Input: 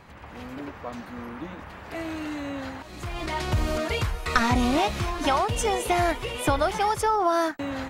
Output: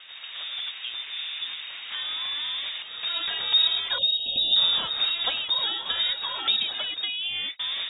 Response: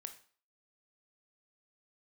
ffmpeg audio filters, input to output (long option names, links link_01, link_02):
-filter_complex "[0:a]acrossover=split=260|2900[link_01][link_02][link_03];[link_02]acompressor=threshold=-35dB:ratio=6[link_04];[link_01][link_04][link_03]amix=inputs=3:normalize=0,lowpass=frequency=3200:width_type=q:width=0.5098,lowpass=frequency=3200:width_type=q:width=0.6013,lowpass=frequency=3200:width_type=q:width=0.9,lowpass=frequency=3200:width_type=q:width=2.563,afreqshift=-3800,asettb=1/sr,asplit=3[link_05][link_06][link_07];[link_05]atrim=end=3.984[link_08];[link_06]atrim=start=3.98:end=4.56,asetpts=PTS-STARTPTS,afade=type=in:duration=0.004:curve=qsin,afade=type=out:start_time=0.576:duration=0.004:curve=qsin,asuperstop=centerf=1500:order=20:qfactor=0.75[link_09];[link_07]atrim=start=4.556[link_10];[link_08][link_09]acrossfade=duration=0.004:curve1=hsin:curve2=qsin[link_11];[link_11][link_10]acrossfade=duration=0.004:curve1=qsin:curve2=hsin,volume=3.5dB"